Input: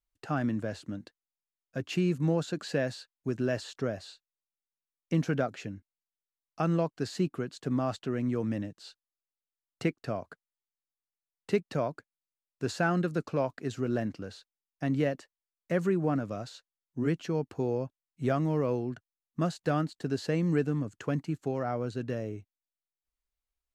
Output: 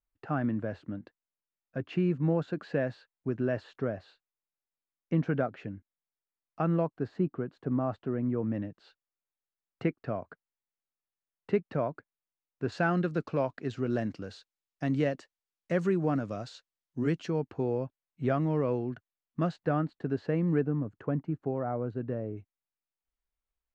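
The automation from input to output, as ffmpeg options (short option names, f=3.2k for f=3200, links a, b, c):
-af "asetnsamples=n=441:p=0,asendcmd='6.87 lowpass f 1300;8.54 lowpass f 2100;12.72 lowpass f 4000;13.9 lowpass f 6700;17.3 lowpass f 3000;19.56 lowpass f 1800;20.61 lowpass f 1200;22.37 lowpass f 2600',lowpass=2k"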